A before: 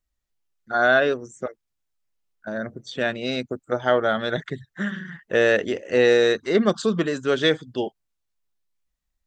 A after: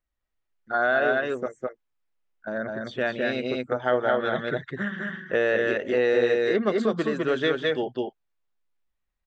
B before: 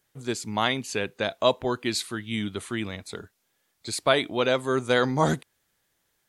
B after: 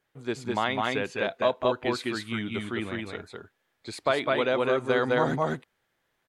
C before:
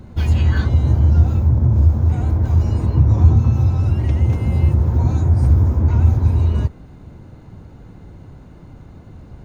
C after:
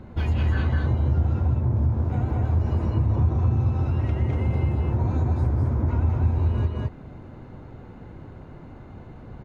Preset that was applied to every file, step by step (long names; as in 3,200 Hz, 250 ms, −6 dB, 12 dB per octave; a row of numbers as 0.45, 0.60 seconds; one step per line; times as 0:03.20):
bass and treble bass −5 dB, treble −14 dB
multi-tap delay 201/209 ms −10.5/−3 dB
downward compressor 2 to 1, threshold −22 dBFS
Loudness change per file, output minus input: −3.0, −1.5, −7.5 LU